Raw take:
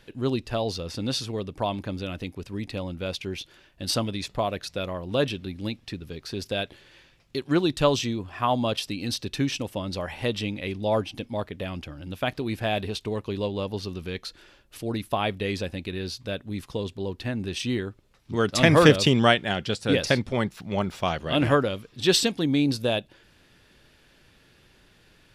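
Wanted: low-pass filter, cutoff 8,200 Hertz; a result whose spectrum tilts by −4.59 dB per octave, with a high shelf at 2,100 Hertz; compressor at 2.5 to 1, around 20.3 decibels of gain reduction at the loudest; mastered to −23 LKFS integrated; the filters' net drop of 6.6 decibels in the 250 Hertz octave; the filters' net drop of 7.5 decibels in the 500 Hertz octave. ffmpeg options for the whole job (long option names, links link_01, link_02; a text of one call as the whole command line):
ffmpeg -i in.wav -af "lowpass=8200,equalizer=frequency=250:width_type=o:gain=-6.5,equalizer=frequency=500:width_type=o:gain=-7,highshelf=frequency=2100:gain=-8,acompressor=threshold=-48dB:ratio=2.5,volume=23dB" out.wav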